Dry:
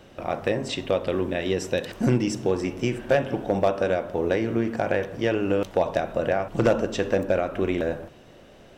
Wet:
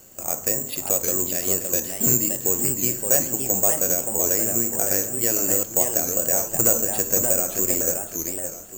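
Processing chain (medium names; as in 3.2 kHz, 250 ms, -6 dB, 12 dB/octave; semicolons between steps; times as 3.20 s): careless resampling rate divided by 6×, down filtered, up zero stuff; wow and flutter 27 cents; modulated delay 570 ms, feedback 33%, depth 188 cents, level -5 dB; trim -6 dB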